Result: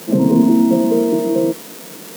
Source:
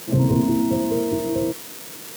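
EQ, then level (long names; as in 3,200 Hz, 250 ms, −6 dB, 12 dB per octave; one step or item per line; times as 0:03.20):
Chebyshev high-pass with heavy ripple 150 Hz, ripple 3 dB
low-shelf EQ 470 Hz +8 dB
+4.0 dB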